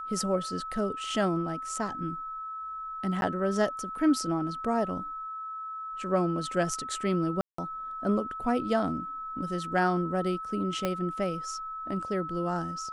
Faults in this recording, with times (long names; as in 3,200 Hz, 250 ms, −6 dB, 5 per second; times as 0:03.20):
whistle 1,300 Hz −35 dBFS
0:03.21–0:03.22: drop-out
0:07.41–0:07.58: drop-out 174 ms
0:10.85: click −14 dBFS